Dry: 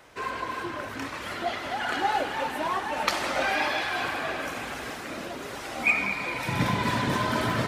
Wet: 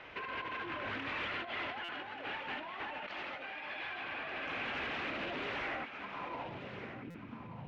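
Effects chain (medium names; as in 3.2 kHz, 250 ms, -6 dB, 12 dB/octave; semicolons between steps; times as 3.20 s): peaking EQ 8.6 kHz -11 dB 0.47 oct; hum notches 60/120/180/240 Hz; compressor with a negative ratio -37 dBFS, ratio -1; saturation -30.5 dBFS, distortion -13 dB; low-pass sweep 2.7 kHz -> 160 Hz, 5.54–7.61 s; thinning echo 1184 ms, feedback 23%, high-pass 150 Hz, level -10 dB; buffer glitch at 1.84/7.10 s, samples 256, times 7; loudspeaker Doppler distortion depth 0.31 ms; trim -6 dB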